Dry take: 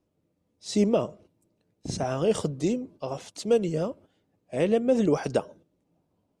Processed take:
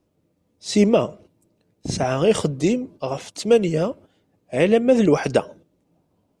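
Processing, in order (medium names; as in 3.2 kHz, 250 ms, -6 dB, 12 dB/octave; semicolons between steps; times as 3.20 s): dynamic bell 2.2 kHz, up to +6 dB, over -50 dBFS, Q 1.5; trim +6.5 dB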